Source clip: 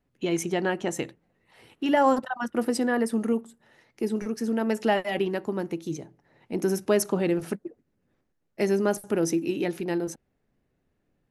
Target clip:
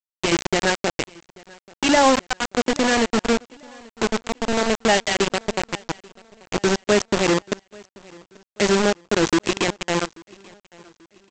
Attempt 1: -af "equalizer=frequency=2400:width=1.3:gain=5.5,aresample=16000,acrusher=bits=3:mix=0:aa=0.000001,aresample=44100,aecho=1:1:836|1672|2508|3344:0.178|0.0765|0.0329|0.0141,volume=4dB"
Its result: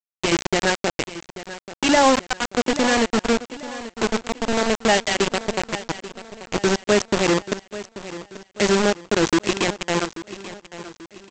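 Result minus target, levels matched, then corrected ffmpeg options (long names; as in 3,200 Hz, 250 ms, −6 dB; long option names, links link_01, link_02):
echo-to-direct +10 dB
-af "equalizer=frequency=2400:width=1.3:gain=5.5,aresample=16000,acrusher=bits=3:mix=0:aa=0.000001,aresample=44100,aecho=1:1:836|1672|2508:0.0562|0.0242|0.0104,volume=4dB"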